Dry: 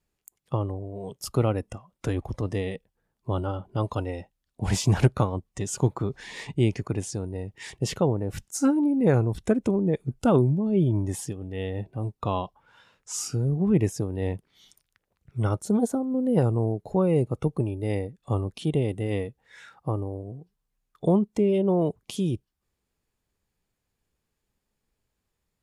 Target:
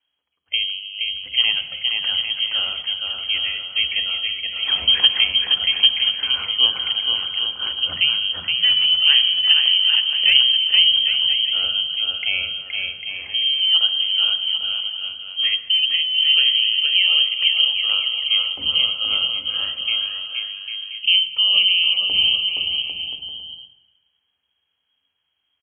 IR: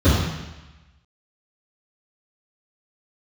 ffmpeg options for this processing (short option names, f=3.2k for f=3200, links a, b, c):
-filter_complex "[0:a]lowpass=f=2.8k:t=q:w=0.5098,lowpass=f=2.8k:t=q:w=0.6013,lowpass=f=2.8k:t=q:w=0.9,lowpass=f=2.8k:t=q:w=2.563,afreqshift=-3300,aecho=1:1:470|799|1029|1191|1303:0.631|0.398|0.251|0.158|0.1,asplit=2[a][b];[1:a]atrim=start_sample=2205[c];[b][c]afir=irnorm=-1:irlink=0,volume=-28.5dB[d];[a][d]amix=inputs=2:normalize=0,volume=4dB"